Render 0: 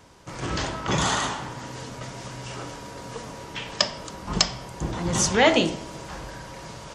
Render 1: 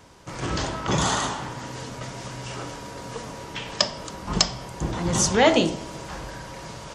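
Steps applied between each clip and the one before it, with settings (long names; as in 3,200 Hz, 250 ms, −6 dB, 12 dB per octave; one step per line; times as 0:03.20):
dynamic equaliser 2,200 Hz, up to −4 dB, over −35 dBFS, Q 0.99
level +1.5 dB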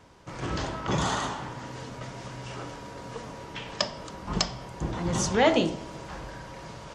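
high-shelf EQ 5,700 Hz −9 dB
level −3.5 dB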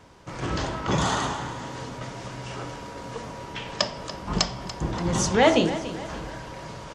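repeating echo 288 ms, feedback 46%, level −14 dB
level +3 dB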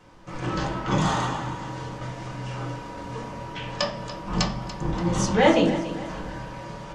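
convolution reverb RT60 0.35 s, pre-delay 4 ms, DRR −2.5 dB
level −4.5 dB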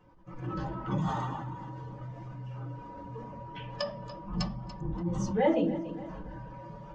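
expanding power law on the bin magnitudes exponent 1.6
level −7.5 dB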